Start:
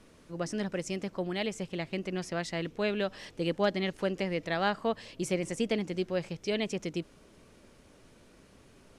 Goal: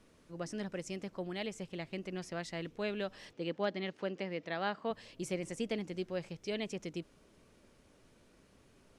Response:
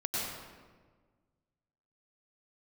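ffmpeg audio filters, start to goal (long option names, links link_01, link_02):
-filter_complex "[0:a]asettb=1/sr,asplit=3[link_01][link_02][link_03];[link_01]atrim=end=3.334[link_04];[link_02]atrim=start=3.33:end=4.91,asetpts=PTS-STARTPTS,afade=type=in:duration=0.004:curve=qsin,afade=type=out:start_time=1.576:duration=0.004:curve=qsin,highpass=160,lowpass=4900[link_05];[link_03]atrim=start=4.906[link_06];[link_04][link_05]acrossfade=duration=0.004:curve1=hsin:curve2=qsin[link_07];[link_07][link_06]acrossfade=duration=0.004:curve1=qsin:curve2=hsin,volume=-6.5dB"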